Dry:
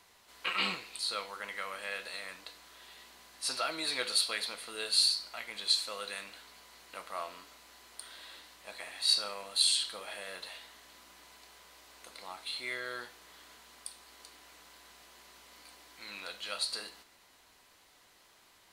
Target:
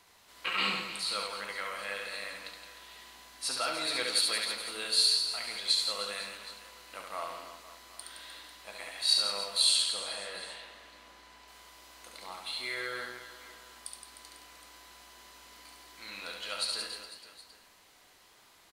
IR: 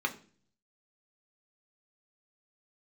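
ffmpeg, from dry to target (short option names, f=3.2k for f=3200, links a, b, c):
-filter_complex "[0:a]asettb=1/sr,asplit=3[a][b][c];[a]atrim=end=9.854[d];[b]atrim=start=9.85:end=11.48,asetpts=PTS-STARTPTS,afade=t=in:d=0.004:c=qsin,afade=t=out:st=1.626:d=0.004:c=qsin,lowpass=f=3.5k:p=1[e];[c]atrim=start=11.476[f];[d][e]acrossfade=d=0.004:c1=hsin:c2=qsin[g];[g][f]acrossfade=d=0.004:c1=qsin:c2=hsin,aecho=1:1:70|168|305.2|497.3|766.2:0.631|0.398|0.251|0.158|0.1"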